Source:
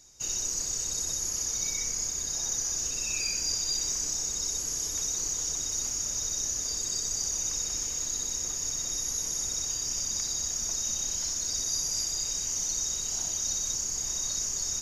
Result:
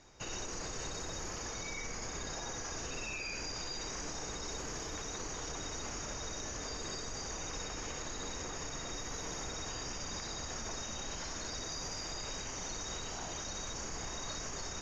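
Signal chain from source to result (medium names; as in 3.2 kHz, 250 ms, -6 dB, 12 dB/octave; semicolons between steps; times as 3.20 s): low-pass 2 kHz 12 dB/octave; bass shelf 300 Hz -7 dB; peak limiter -41.5 dBFS, peak gain reduction 9 dB; trim +10 dB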